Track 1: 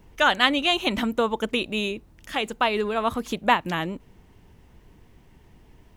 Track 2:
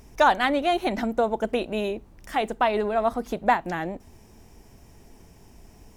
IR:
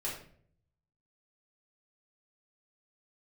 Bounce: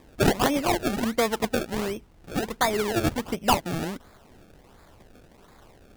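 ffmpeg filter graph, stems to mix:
-filter_complex "[0:a]agate=range=0.447:threshold=0.01:ratio=16:detection=peak,volume=0.531[s0];[1:a]highshelf=f=5700:t=q:w=3:g=14,volume=0.447[s1];[s0][s1]amix=inputs=2:normalize=0,acrusher=samples=30:mix=1:aa=0.000001:lfo=1:lforange=30:lforate=1.4"

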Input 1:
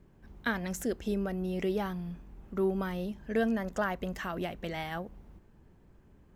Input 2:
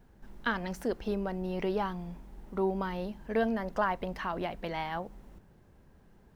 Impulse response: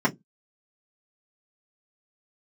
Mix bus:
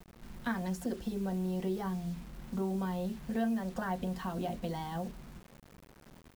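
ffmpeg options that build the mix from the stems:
-filter_complex "[0:a]volume=0.447,asplit=2[s0][s1];[s1]volume=0.188[s2];[1:a]acompressor=threshold=0.02:ratio=10,adelay=0.4,volume=0.668,asplit=2[s3][s4];[s4]volume=0.1[s5];[2:a]atrim=start_sample=2205[s6];[s2][s5]amix=inputs=2:normalize=0[s7];[s7][s6]afir=irnorm=-1:irlink=0[s8];[s0][s3][s8]amix=inputs=3:normalize=0,acrossover=split=440[s9][s10];[s9]acompressor=threshold=0.0178:ratio=3[s11];[s11][s10]amix=inputs=2:normalize=0,acrusher=bits=8:mix=0:aa=0.000001"

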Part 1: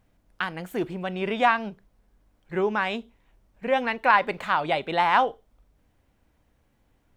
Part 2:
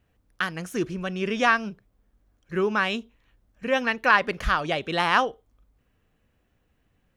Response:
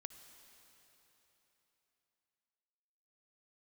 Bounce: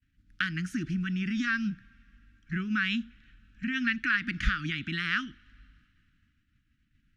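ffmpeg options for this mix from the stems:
-filter_complex "[0:a]acompressor=threshold=0.0316:ratio=3,volume=0.794,asplit=2[s0][s1];[1:a]volume=1.26,asplit=2[s2][s3];[s3]volume=0.0891[s4];[s1]apad=whole_len=315869[s5];[s2][s5]sidechaincompress=threshold=0.0141:ratio=8:attack=11:release=127[s6];[2:a]atrim=start_sample=2205[s7];[s4][s7]afir=irnorm=-1:irlink=0[s8];[s0][s6][s8]amix=inputs=3:normalize=0,lowpass=5400,agate=range=0.0224:threshold=0.00141:ratio=3:detection=peak,asuperstop=centerf=640:order=12:qfactor=0.59"

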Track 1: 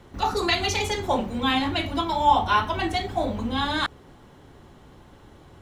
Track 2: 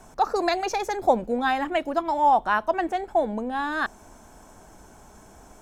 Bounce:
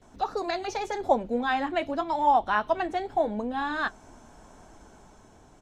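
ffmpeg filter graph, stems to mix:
-filter_complex "[0:a]equalizer=f=125:t=o:w=1:g=3,equalizer=f=250:t=o:w=1:g=5,equalizer=f=500:t=o:w=1:g=6,equalizer=f=1000:t=o:w=1:g=-11,equalizer=f=4000:t=o:w=1:g=6,acompressor=threshold=0.0447:ratio=6,volume=0.266[s0];[1:a]lowpass=7300,dynaudnorm=f=210:g=7:m=1.68,adelay=16,volume=0.75[s1];[s0][s1]amix=inputs=2:normalize=0,flanger=delay=2.7:depth=6.1:regen=-63:speed=0.84:shape=triangular"

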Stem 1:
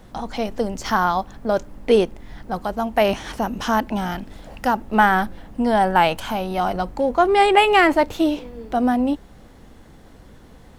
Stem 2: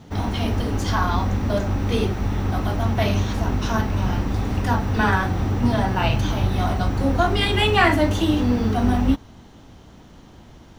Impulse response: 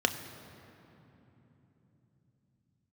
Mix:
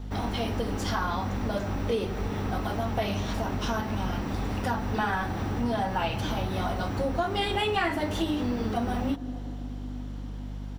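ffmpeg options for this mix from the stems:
-filter_complex "[0:a]volume=0.168,asplit=2[s0][s1];[s1]volume=0.422[s2];[1:a]lowshelf=f=200:g=-7,bandreject=f=6400:w=13,aeval=exprs='val(0)+0.0224*(sin(2*PI*50*n/s)+sin(2*PI*2*50*n/s)/2+sin(2*PI*3*50*n/s)/3+sin(2*PI*4*50*n/s)/4+sin(2*PI*5*50*n/s)/5)':c=same,adelay=0.9,volume=0.794[s3];[2:a]atrim=start_sample=2205[s4];[s2][s4]afir=irnorm=-1:irlink=0[s5];[s0][s3][s5]amix=inputs=3:normalize=0,acompressor=threshold=0.0501:ratio=3"

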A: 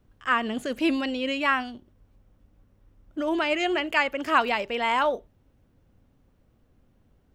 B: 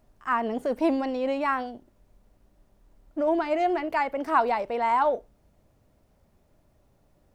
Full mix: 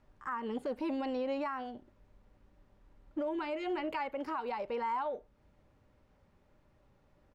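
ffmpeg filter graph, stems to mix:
-filter_complex "[0:a]volume=0.178[s0];[1:a]lowpass=1800,crystalizer=i=9:c=0,adelay=0.5,volume=0.596[s1];[s0][s1]amix=inputs=2:normalize=0,asuperstop=centerf=680:order=12:qfactor=7.4,alimiter=level_in=1.58:limit=0.0631:level=0:latency=1:release=335,volume=0.631"

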